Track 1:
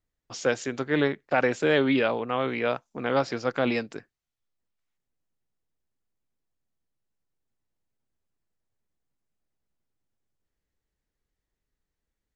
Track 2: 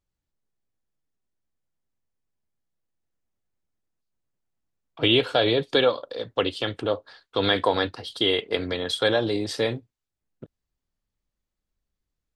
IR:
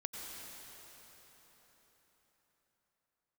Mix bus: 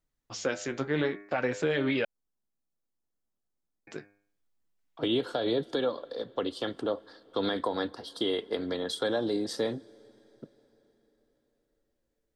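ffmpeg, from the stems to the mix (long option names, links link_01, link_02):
-filter_complex "[0:a]flanger=delay=6:depth=8.7:regen=38:speed=0.61:shape=triangular,bandreject=frequency=101.3:width_type=h:width=4,bandreject=frequency=202.6:width_type=h:width=4,bandreject=frequency=303.9:width_type=h:width=4,bandreject=frequency=405.2:width_type=h:width=4,bandreject=frequency=506.5:width_type=h:width=4,bandreject=frequency=607.8:width_type=h:width=4,bandreject=frequency=709.1:width_type=h:width=4,bandreject=frequency=810.4:width_type=h:width=4,bandreject=frequency=911.7:width_type=h:width=4,bandreject=frequency=1013:width_type=h:width=4,bandreject=frequency=1114.3:width_type=h:width=4,bandreject=frequency=1215.6:width_type=h:width=4,bandreject=frequency=1316.9:width_type=h:width=4,bandreject=frequency=1418.2:width_type=h:width=4,bandreject=frequency=1519.5:width_type=h:width=4,bandreject=frequency=1620.8:width_type=h:width=4,bandreject=frequency=1722.1:width_type=h:width=4,bandreject=frequency=1823.4:width_type=h:width=4,bandreject=frequency=1924.7:width_type=h:width=4,bandreject=frequency=2026:width_type=h:width=4,bandreject=frequency=2127.3:width_type=h:width=4,bandreject=frequency=2228.6:width_type=h:width=4,bandreject=frequency=2329.9:width_type=h:width=4,bandreject=frequency=2431.2:width_type=h:width=4,bandreject=frequency=2532.5:width_type=h:width=4,volume=2.5dB,asplit=3[link_01][link_02][link_03];[link_01]atrim=end=2.05,asetpts=PTS-STARTPTS,afade=type=out:start_time=2.046:duration=0.004:curve=hsin[link_04];[link_02]atrim=start=2.05:end=3.87,asetpts=PTS-STARTPTS,volume=0[link_05];[link_03]atrim=start=3.87,asetpts=PTS-STARTPTS,afade=type=in:duration=0.004:curve=hsin[link_06];[link_04][link_05][link_06]concat=n=3:v=0:a=1[link_07];[1:a]equalizer=frequency=100:width_type=o:width=0.67:gain=-12,equalizer=frequency=250:width_type=o:width=0.67:gain=3,equalizer=frequency=2500:width_type=o:width=0.67:gain=-12,acrossover=split=280[link_08][link_09];[link_09]acompressor=threshold=-22dB:ratio=6[link_10];[link_08][link_10]amix=inputs=2:normalize=0,volume=-4dB,asplit=2[link_11][link_12];[link_12]volume=-21.5dB[link_13];[2:a]atrim=start_sample=2205[link_14];[link_13][link_14]afir=irnorm=-1:irlink=0[link_15];[link_07][link_11][link_15]amix=inputs=3:normalize=0,alimiter=limit=-18dB:level=0:latency=1:release=148"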